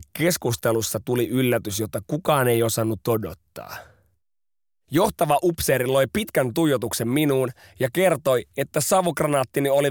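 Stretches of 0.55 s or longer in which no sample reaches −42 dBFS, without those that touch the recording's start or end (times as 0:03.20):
0:03.86–0:04.91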